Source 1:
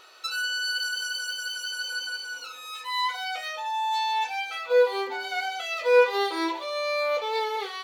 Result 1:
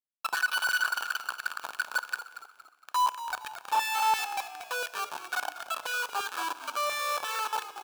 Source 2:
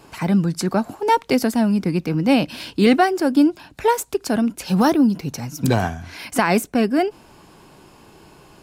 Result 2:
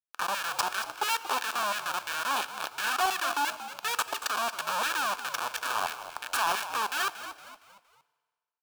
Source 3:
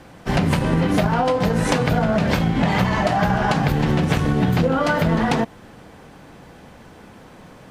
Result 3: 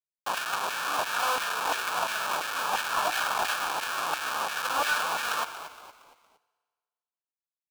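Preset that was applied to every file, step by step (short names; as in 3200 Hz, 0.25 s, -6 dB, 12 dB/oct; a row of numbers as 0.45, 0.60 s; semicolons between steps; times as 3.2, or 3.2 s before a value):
in parallel at +3 dB: compressor 10:1, threshold -26 dBFS; on the sum: Schmitt trigger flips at -18 dBFS; LFO high-pass saw down 2.9 Hz 860–1900 Hz; hard clip -12 dBFS; Butterworth band-stop 2000 Hz, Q 4; on a send: frequency-shifting echo 0.232 s, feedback 41%, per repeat -64 Hz, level -12 dB; on the sum: FDN reverb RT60 1.6 s, low-frequency decay 0.8×, high-frequency decay 0.95×, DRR 15.5 dB; gain -6.5 dB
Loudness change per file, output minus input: -4.0, -10.5, -9.0 LU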